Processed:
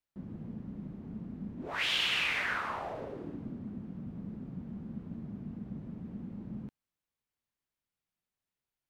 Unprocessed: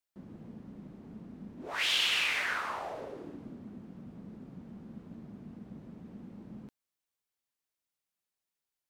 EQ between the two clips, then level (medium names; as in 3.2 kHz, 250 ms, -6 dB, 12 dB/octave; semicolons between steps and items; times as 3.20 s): tone controls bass +8 dB, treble -7 dB; 0.0 dB